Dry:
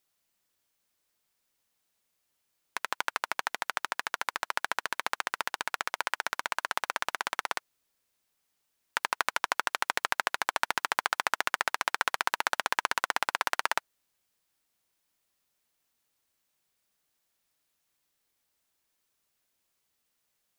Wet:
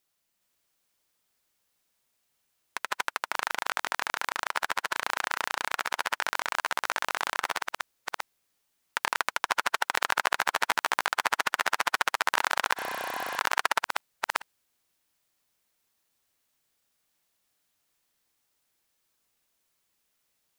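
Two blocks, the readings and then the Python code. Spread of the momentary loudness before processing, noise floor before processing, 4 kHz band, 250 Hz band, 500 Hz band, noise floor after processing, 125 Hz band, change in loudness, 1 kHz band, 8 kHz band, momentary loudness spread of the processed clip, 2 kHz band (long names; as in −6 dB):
5 LU, −79 dBFS, +2.0 dB, +2.5 dB, +2.5 dB, −76 dBFS, can't be measured, +2.0 dB, +2.0 dB, +2.0 dB, 8 LU, +2.0 dB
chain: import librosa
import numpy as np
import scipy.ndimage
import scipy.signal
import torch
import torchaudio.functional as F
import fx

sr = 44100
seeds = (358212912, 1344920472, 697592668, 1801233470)

y = fx.reverse_delay(x, sr, ms=412, wet_db=-1.0)
y = fx.spec_repair(y, sr, seeds[0], start_s=12.8, length_s=0.56, low_hz=800.0, high_hz=9900.0, source='before')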